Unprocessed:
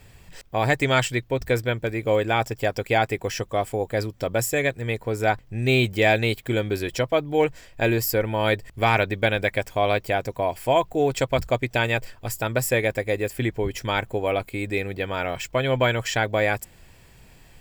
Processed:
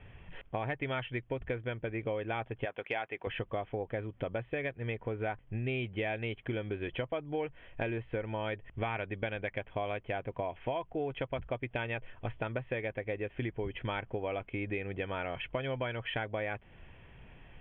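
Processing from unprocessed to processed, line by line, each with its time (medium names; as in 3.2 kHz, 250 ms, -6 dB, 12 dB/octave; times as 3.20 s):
2.65–3.27 s: high-pass 730 Hz 6 dB/octave
whole clip: steep low-pass 3.3 kHz 96 dB/octave; compression 6:1, threshold -30 dBFS; trim -2.5 dB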